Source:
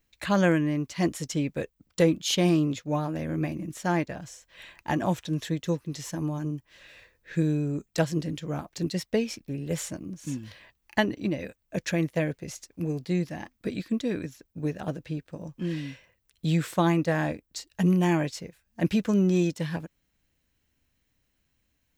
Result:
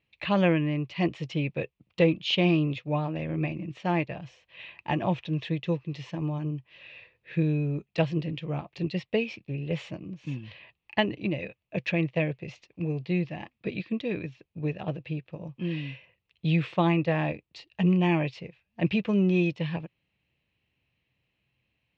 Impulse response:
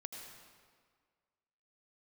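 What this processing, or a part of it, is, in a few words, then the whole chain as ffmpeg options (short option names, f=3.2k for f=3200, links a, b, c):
guitar cabinet: -af "highpass=88,equalizer=f=130:t=q:w=4:g=5,equalizer=f=260:t=q:w=4:g=-7,equalizer=f=1.5k:t=q:w=4:g=-9,equalizer=f=2.6k:t=q:w=4:g=9,lowpass=f=3.7k:w=0.5412,lowpass=f=3.7k:w=1.3066"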